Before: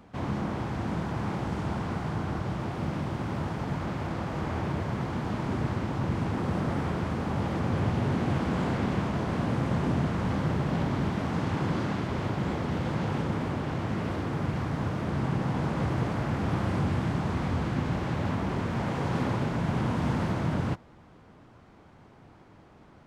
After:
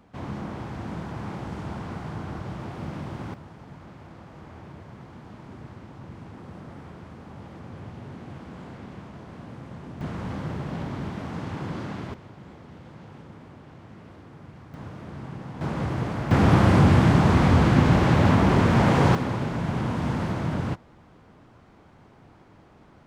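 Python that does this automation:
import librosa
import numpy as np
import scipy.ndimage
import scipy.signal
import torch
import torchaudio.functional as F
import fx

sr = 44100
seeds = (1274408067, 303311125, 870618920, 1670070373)

y = fx.gain(x, sr, db=fx.steps((0.0, -3.0), (3.34, -13.0), (10.01, -4.0), (12.14, -15.5), (14.74, -9.0), (15.61, 0.5), (16.31, 11.0), (19.15, 1.0)))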